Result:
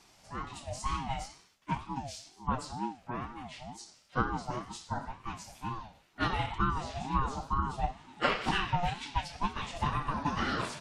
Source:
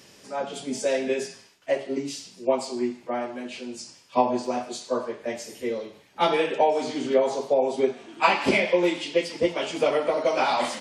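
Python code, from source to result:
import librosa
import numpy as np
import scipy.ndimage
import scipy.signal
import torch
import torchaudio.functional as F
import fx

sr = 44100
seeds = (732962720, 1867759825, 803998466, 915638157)

y = fx.ring_lfo(x, sr, carrier_hz=470.0, swing_pct=25, hz=2.1)
y = F.gain(torch.from_numpy(y), -6.0).numpy()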